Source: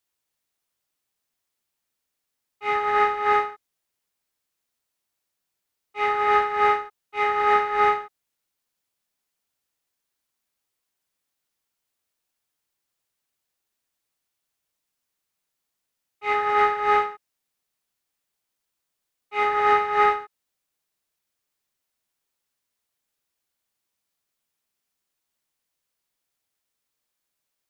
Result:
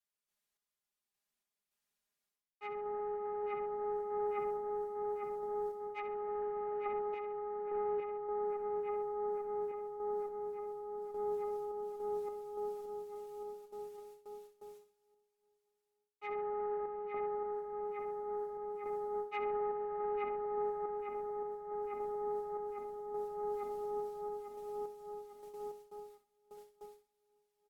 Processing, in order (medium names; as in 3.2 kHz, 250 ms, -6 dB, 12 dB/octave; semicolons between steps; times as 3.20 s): low-pass that closes with the level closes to 560 Hz, closed at -22 dBFS; on a send: filtered feedback delay 848 ms, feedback 59%, low-pass 2.1 kHz, level -7 dB; on the sum: gate with hold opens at -58 dBFS; flutter echo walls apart 11.1 m, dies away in 0.37 s; peak limiter -25 dBFS, peak gain reduction 11 dB; comb 4.9 ms, depth 91%; reverse; compression 10:1, threshold -46 dBFS, peak gain reduction 22.5 dB; reverse; random-step tremolo 3.5 Hz; trim +12 dB